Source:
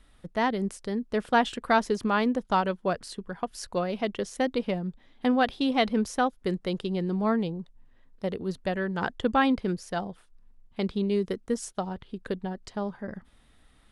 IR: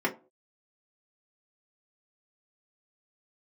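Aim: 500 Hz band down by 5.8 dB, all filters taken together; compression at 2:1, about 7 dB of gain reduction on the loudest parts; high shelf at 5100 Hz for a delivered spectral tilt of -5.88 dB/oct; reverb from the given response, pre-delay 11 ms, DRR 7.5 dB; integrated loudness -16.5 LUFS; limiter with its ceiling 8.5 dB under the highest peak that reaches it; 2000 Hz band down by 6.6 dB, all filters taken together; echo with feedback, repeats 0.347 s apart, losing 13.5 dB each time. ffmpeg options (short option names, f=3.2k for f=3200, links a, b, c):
-filter_complex "[0:a]equalizer=f=500:t=o:g=-7,equalizer=f=2k:t=o:g=-8,highshelf=f=5.1k:g=-4,acompressor=threshold=-35dB:ratio=2,alimiter=level_in=6.5dB:limit=-24dB:level=0:latency=1,volume=-6.5dB,aecho=1:1:347|694:0.211|0.0444,asplit=2[a][b];[1:a]atrim=start_sample=2205,adelay=11[c];[b][c]afir=irnorm=-1:irlink=0,volume=-18dB[d];[a][d]amix=inputs=2:normalize=0,volume=23dB"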